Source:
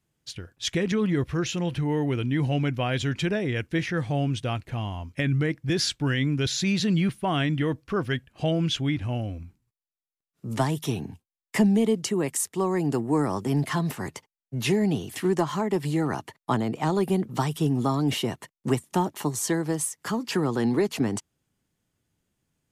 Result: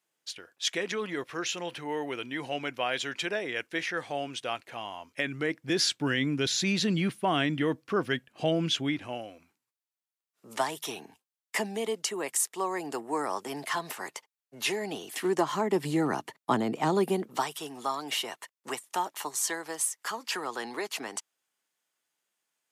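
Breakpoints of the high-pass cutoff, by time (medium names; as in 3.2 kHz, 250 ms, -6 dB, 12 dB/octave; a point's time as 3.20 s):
5.00 s 530 Hz
5.98 s 230 Hz
8.81 s 230 Hz
9.31 s 590 Hz
14.81 s 590 Hz
15.85 s 210 Hz
16.97 s 210 Hz
17.61 s 780 Hz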